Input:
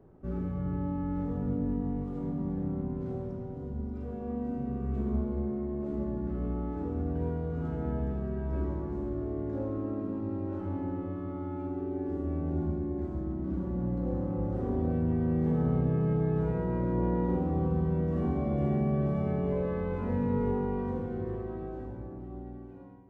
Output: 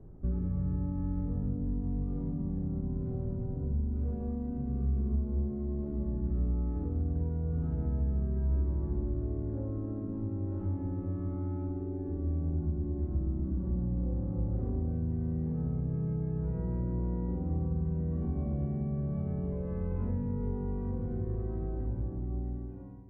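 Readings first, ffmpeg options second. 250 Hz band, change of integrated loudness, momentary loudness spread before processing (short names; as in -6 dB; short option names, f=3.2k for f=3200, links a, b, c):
-4.0 dB, -1.5 dB, 9 LU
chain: -af "acompressor=threshold=-35dB:ratio=6,aemphasis=mode=reproduction:type=riaa,volume=-4.5dB"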